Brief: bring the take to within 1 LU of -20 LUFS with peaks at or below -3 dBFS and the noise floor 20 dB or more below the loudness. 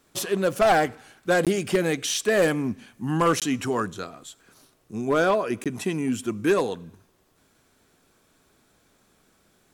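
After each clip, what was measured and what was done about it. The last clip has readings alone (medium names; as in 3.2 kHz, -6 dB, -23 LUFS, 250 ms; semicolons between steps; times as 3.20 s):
clipped samples 0.7%; clipping level -14.0 dBFS; dropouts 3; longest dropout 17 ms; loudness -24.5 LUFS; peak level -14.0 dBFS; loudness target -20.0 LUFS
-> clip repair -14 dBFS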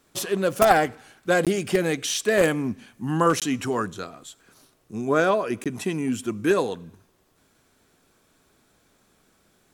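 clipped samples 0.0%; dropouts 3; longest dropout 17 ms
-> interpolate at 1.45/3.40/5.64 s, 17 ms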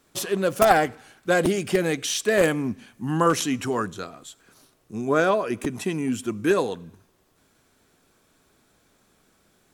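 dropouts 0; loudness -23.5 LUFS; peak level -5.0 dBFS; loudness target -20.0 LUFS
-> trim +3.5 dB; peak limiter -3 dBFS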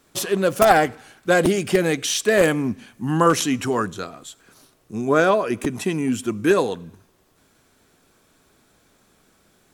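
loudness -20.5 LUFS; peak level -3.0 dBFS; noise floor -61 dBFS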